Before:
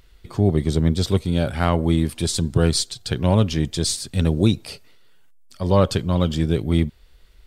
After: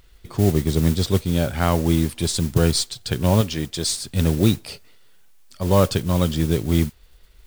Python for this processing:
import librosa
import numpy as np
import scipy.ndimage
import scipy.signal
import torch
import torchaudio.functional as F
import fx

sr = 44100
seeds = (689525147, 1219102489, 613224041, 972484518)

y = fx.low_shelf(x, sr, hz=270.0, db=-7.5, at=(3.41, 3.93))
y = fx.mod_noise(y, sr, seeds[0], snr_db=18)